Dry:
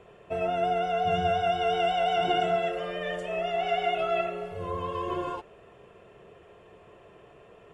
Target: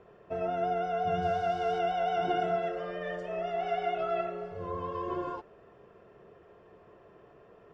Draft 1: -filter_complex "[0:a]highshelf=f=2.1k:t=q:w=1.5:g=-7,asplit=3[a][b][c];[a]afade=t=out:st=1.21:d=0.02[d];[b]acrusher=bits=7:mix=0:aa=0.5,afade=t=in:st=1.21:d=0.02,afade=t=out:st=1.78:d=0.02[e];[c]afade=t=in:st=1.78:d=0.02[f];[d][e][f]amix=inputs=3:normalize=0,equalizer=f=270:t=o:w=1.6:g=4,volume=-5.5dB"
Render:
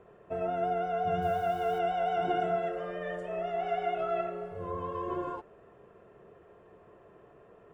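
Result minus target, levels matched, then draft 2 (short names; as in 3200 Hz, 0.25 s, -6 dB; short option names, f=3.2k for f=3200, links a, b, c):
4000 Hz band -3.0 dB
-filter_complex "[0:a]highshelf=f=2.1k:t=q:w=1.5:g=-7,asplit=3[a][b][c];[a]afade=t=out:st=1.21:d=0.02[d];[b]acrusher=bits=7:mix=0:aa=0.5,afade=t=in:st=1.21:d=0.02,afade=t=out:st=1.78:d=0.02[e];[c]afade=t=in:st=1.78:d=0.02[f];[d][e][f]amix=inputs=3:normalize=0,lowpass=f=5.2k:t=q:w=2.8,equalizer=f=270:t=o:w=1.6:g=4,volume=-5.5dB"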